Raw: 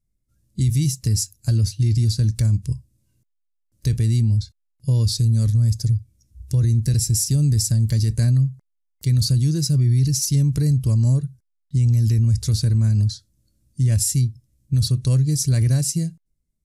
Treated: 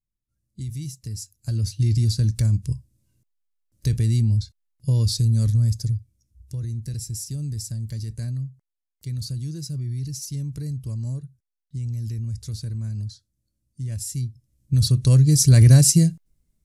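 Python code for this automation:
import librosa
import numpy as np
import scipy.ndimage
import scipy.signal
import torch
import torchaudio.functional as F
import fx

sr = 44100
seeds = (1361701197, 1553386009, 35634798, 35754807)

y = fx.gain(x, sr, db=fx.line((1.19, -12.5), (1.81, -1.5), (5.6, -1.5), (6.58, -11.5), (13.98, -11.5), (14.8, 0.5), (15.75, 7.0)))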